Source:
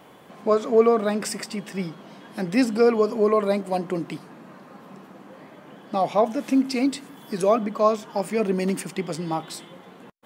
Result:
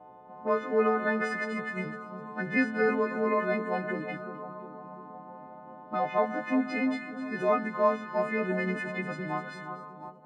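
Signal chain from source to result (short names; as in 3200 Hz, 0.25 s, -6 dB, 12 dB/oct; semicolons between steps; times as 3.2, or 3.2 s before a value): frequency quantiser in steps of 3 st; low shelf 160 Hz +5 dB; split-band echo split 1400 Hz, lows 0.355 s, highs 0.253 s, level -10 dB; envelope low-pass 760–1800 Hz up, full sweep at -23 dBFS; gain -9 dB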